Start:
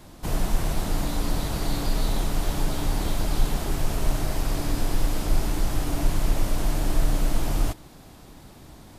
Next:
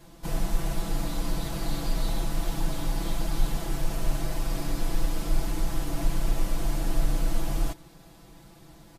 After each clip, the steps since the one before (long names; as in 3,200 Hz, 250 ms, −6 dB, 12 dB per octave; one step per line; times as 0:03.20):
comb filter 6 ms, depth 97%
level −7 dB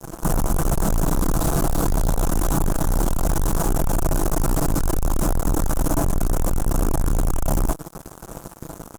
in parallel at −3 dB: downward compressor, threshold −30 dBFS, peak gain reduction 13.5 dB
on the sum: fuzz pedal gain 36 dB, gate −43 dBFS
flat-topped bell 3,000 Hz −12.5 dB
level −3 dB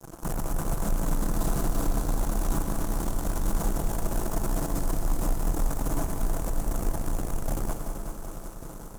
hard clipping −16.5 dBFS, distortion −16 dB
echo machine with several playback heads 191 ms, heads first and second, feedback 71%, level −12.5 dB
on a send at −7 dB: convolution reverb RT60 2.0 s, pre-delay 83 ms
on the sum: level −9 dB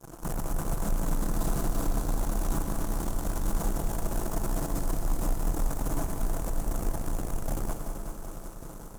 echo ahead of the sound 154 ms −21 dB
level −2 dB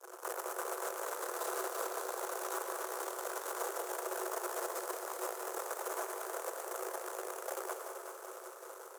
Chebyshev high-pass with heavy ripple 360 Hz, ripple 6 dB
level +3 dB